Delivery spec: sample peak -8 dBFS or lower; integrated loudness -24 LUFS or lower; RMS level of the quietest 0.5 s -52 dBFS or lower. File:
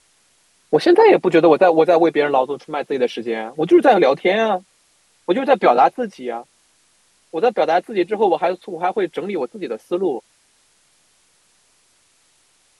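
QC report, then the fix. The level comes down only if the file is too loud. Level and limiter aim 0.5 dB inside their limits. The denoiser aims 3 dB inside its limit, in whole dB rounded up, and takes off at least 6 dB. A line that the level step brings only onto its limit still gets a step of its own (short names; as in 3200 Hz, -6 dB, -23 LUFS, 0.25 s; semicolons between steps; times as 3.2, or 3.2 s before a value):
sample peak -1.5 dBFS: fail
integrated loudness -17.0 LUFS: fail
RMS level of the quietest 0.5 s -59 dBFS: OK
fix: gain -7.5 dB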